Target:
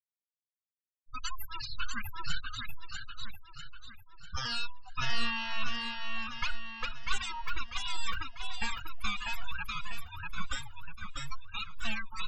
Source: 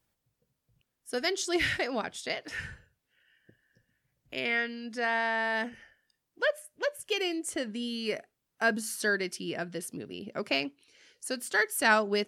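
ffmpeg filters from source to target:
-filter_complex "[0:a]equalizer=f=100:t=o:w=0.67:g=-12,equalizer=f=630:t=o:w=0.67:g=5,equalizer=f=6.3k:t=o:w=0.67:g=7,acrossover=split=210|5900[a][b][c];[b]dynaudnorm=f=400:g=13:m=14.5dB[d];[a][d][c]amix=inputs=3:normalize=0,afreqshift=140,aeval=exprs='abs(val(0))':c=same,equalizer=f=360:w=0.48:g=-11.5,afftfilt=real='re*gte(hypot(re,im),0.0501)':imag='im*gte(hypot(re,im),0.0501)':win_size=1024:overlap=0.75,acompressor=threshold=-24dB:ratio=6,bandreject=f=5.8k:w=12,asplit=2[e][f];[f]aecho=0:1:645|1290|1935|2580|3225|3870:0.668|0.321|0.154|0.0739|0.0355|0.017[g];[e][g]amix=inputs=2:normalize=0,asplit=2[h][i];[i]adelay=2.2,afreqshift=2.1[j];[h][j]amix=inputs=2:normalize=1"

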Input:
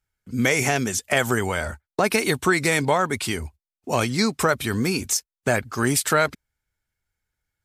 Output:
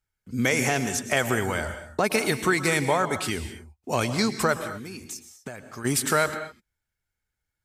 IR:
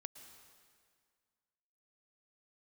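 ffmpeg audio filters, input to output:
-filter_complex "[0:a]asplit=3[a][b][c];[a]afade=t=out:st=4.58:d=0.02[d];[b]acompressor=threshold=-33dB:ratio=6,afade=t=in:st=4.58:d=0.02,afade=t=out:st=5.84:d=0.02[e];[c]afade=t=in:st=5.84:d=0.02[f];[d][e][f]amix=inputs=3:normalize=0[g];[1:a]atrim=start_sample=2205,afade=t=out:st=0.31:d=0.01,atrim=end_sample=14112[h];[g][h]afir=irnorm=-1:irlink=0,volume=2.5dB"

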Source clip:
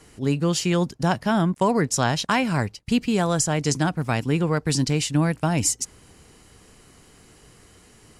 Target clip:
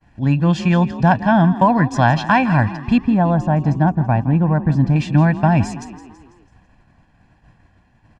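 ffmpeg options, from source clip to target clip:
-filter_complex "[0:a]asetnsamples=n=441:p=0,asendcmd='2.98 lowpass f 1000;4.96 lowpass f 2100',lowpass=2.3k,agate=range=-33dB:threshold=-45dB:ratio=3:detection=peak,aecho=1:1:1.2:0.85,asplit=6[a][b][c][d][e][f];[b]adelay=165,afreqshift=36,volume=-15dB[g];[c]adelay=330,afreqshift=72,volume=-21dB[h];[d]adelay=495,afreqshift=108,volume=-27dB[i];[e]adelay=660,afreqshift=144,volume=-33.1dB[j];[f]adelay=825,afreqshift=180,volume=-39.1dB[k];[a][g][h][i][j][k]amix=inputs=6:normalize=0,volume=5dB"

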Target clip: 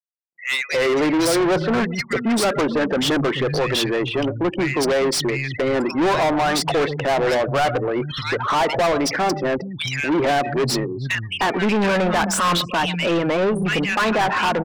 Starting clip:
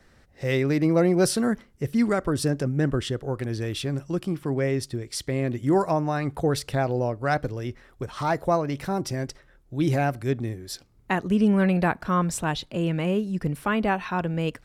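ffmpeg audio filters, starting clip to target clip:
-filter_complex "[0:a]asplit=2[a][b];[b]adelay=122,lowpass=f=4.8k:p=1,volume=-23dB,asplit=2[c][d];[d]adelay=122,lowpass=f=4.8k:p=1,volume=0.36[e];[c][e]amix=inputs=2:normalize=0[f];[a][f]amix=inputs=2:normalize=0,afftfilt=real='re*gte(hypot(re,im),0.0141)':imag='im*gte(hypot(re,im),0.0141)':win_size=1024:overlap=0.75,lowshelf=f=88:g=-8.5,acrossover=split=150|2200[g][h][i];[h]adelay=310[j];[g]adelay=740[k];[k][j][i]amix=inputs=3:normalize=0,asplit=2[l][m];[m]highpass=f=720:p=1,volume=33dB,asoftclip=type=tanh:threshold=-7dB[n];[l][n]amix=inputs=2:normalize=0,lowpass=f=5.4k:p=1,volume=-6dB,volume=-4dB"

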